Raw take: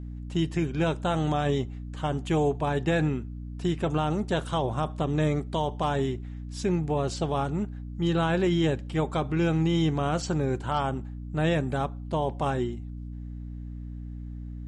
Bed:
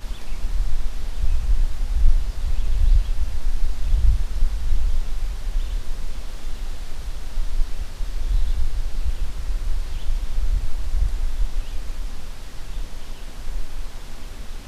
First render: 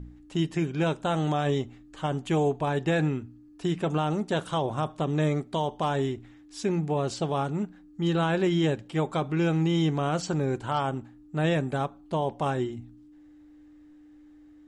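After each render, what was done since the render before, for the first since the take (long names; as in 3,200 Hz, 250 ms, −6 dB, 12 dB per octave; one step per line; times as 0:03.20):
hum removal 60 Hz, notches 4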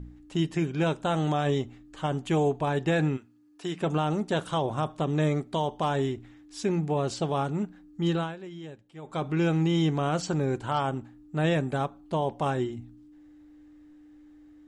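0:03.16–0:03.80: high-pass filter 1,200 Hz → 350 Hz 6 dB per octave
0:08.10–0:09.27: duck −17 dB, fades 0.25 s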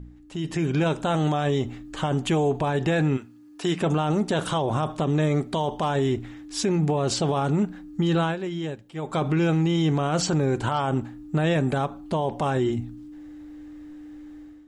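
brickwall limiter −26.5 dBFS, peak gain reduction 10 dB
automatic gain control gain up to 11 dB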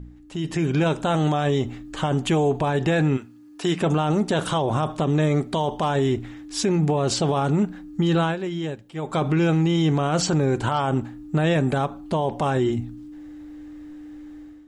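level +2 dB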